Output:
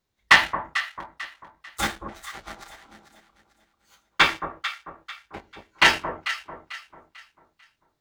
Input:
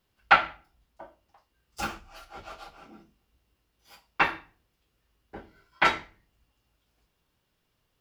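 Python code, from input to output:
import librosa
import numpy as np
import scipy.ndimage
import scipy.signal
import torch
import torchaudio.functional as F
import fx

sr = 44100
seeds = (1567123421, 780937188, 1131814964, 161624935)

y = fx.leveller(x, sr, passes=2)
y = fx.echo_alternate(y, sr, ms=222, hz=840.0, feedback_pct=58, wet_db=-6.5)
y = fx.formant_shift(y, sr, semitones=5)
y = F.gain(torch.from_numpy(y), -1.0).numpy()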